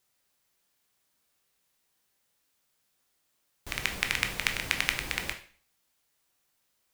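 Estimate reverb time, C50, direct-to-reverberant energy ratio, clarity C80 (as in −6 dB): 0.45 s, 11.0 dB, 5.0 dB, 15.5 dB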